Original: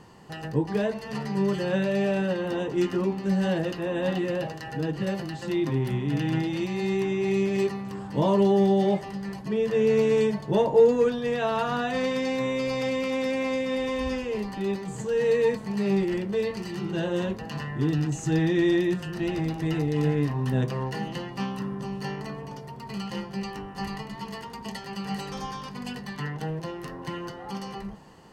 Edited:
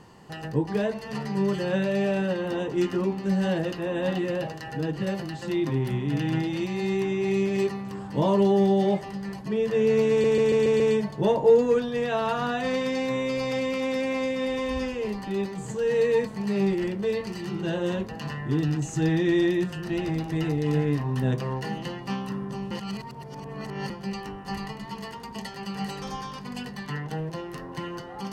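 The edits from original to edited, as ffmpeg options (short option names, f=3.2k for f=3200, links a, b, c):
-filter_complex "[0:a]asplit=8[a][b][c][d][e][f][g][h];[a]atrim=end=10.242[i];[b]atrim=start=10.098:end=10.242[j];[c]atrim=start=10.098:end=10.242[k];[d]atrim=start=10.098:end=10.242[l];[e]atrim=start=10.098:end=10.242[m];[f]atrim=start=10.098:end=22.012[n];[g]atrim=start=22.008:end=23.202,asetpts=PTS-STARTPTS,areverse[o];[h]atrim=start=23.198[p];[i][j]acrossfade=d=0.004:c1=hsin:c2=hsin[q];[q][k]acrossfade=d=0.004:c1=hsin:c2=hsin[r];[r][l]acrossfade=d=0.004:c1=hsin:c2=hsin[s];[s][m]acrossfade=d=0.004:c1=hsin:c2=hsin[t];[t][n]acrossfade=d=0.004:c1=hsin:c2=hsin[u];[u][o]acrossfade=d=0.004:c1=hsin:c2=hsin[v];[v][p]acrossfade=d=0.004:c1=hsin:c2=hsin"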